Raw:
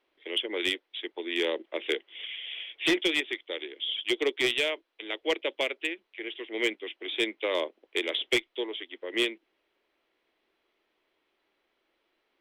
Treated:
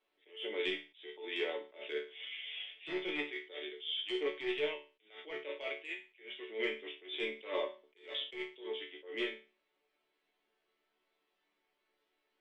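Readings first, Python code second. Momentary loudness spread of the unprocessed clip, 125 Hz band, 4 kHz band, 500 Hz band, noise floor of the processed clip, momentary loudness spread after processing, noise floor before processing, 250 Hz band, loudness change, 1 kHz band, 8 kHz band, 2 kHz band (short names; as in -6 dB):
12 LU, under -10 dB, -10.5 dB, -7.5 dB, -82 dBFS, 10 LU, -77 dBFS, -10.5 dB, -9.5 dB, -8.0 dB, under -25 dB, -10.0 dB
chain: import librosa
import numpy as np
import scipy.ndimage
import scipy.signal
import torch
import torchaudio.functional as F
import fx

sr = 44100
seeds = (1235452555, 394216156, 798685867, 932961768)

y = fx.env_lowpass_down(x, sr, base_hz=2100.0, full_db=-23.0)
y = fx.resonator_bank(y, sr, root=50, chord='major', decay_s=0.34)
y = fx.attack_slew(y, sr, db_per_s=150.0)
y = y * 10.0 ** (10.0 / 20.0)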